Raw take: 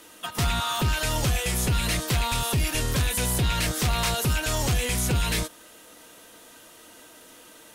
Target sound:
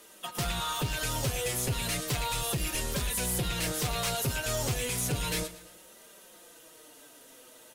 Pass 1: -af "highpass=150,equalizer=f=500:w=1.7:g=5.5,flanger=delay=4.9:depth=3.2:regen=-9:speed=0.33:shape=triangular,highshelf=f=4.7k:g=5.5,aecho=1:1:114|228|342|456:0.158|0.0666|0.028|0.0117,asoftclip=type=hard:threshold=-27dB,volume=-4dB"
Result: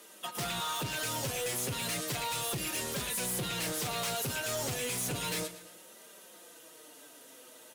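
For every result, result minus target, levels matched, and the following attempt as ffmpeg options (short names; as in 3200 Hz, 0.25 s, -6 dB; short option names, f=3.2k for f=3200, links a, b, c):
hard clip: distortion +12 dB; 125 Hz band -5.0 dB
-af "highpass=150,equalizer=f=500:w=1.7:g=5.5,flanger=delay=4.9:depth=3.2:regen=-9:speed=0.33:shape=triangular,highshelf=f=4.7k:g=5.5,aecho=1:1:114|228|342|456:0.158|0.0666|0.028|0.0117,asoftclip=type=hard:threshold=-20.5dB,volume=-4dB"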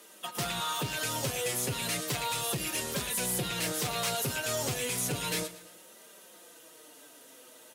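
125 Hz band -4.5 dB
-af "equalizer=f=500:w=1.7:g=5.5,flanger=delay=4.9:depth=3.2:regen=-9:speed=0.33:shape=triangular,highshelf=f=4.7k:g=5.5,aecho=1:1:114|228|342|456:0.158|0.0666|0.028|0.0117,asoftclip=type=hard:threshold=-20.5dB,volume=-4dB"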